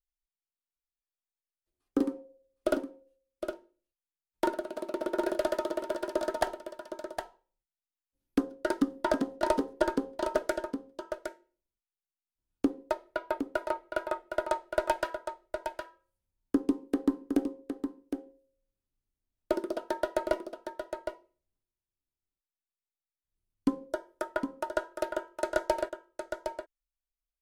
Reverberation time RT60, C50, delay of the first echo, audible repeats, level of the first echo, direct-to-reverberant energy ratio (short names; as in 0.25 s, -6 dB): none, none, 0.762 s, 1, -7.5 dB, none